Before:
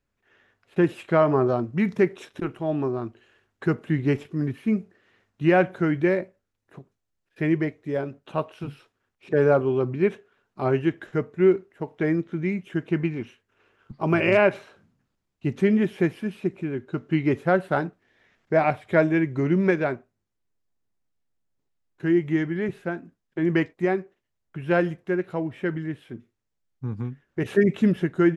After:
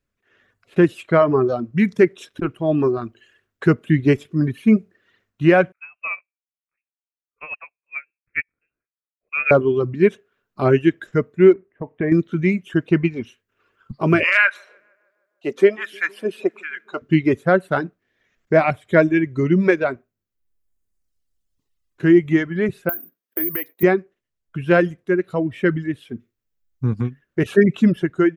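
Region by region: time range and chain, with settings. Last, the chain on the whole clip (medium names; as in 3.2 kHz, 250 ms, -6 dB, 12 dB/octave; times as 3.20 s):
5.72–9.51 s: high-pass 540 Hz + frequency inversion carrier 2.9 kHz + upward expansion 2.5:1, over -40 dBFS
11.53–12.12 s: low-pass 2.3 kHz 24 dB/octave + compression 2.5:1, threshold -27 dBFS + band-stop 1.4 kHz, Q 8.1
14.23–17.02 s: LFO high-pass sine 1.3 Hz 400–1700 Hz + filtered feedback delay 154 ms, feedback 71%, low-pass 1.5 kHz, level -18 dB
22.89–23.83 s: high-pass 320 Hz + compression, threshold -34 dBFS + careless resampling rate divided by 3×, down filtered, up zero stuff
whole clip: level rider gain up to 10.5 dB; peaking EQ 840 Hz -7 dB 0.38 oct; reverb removal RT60 1.8 s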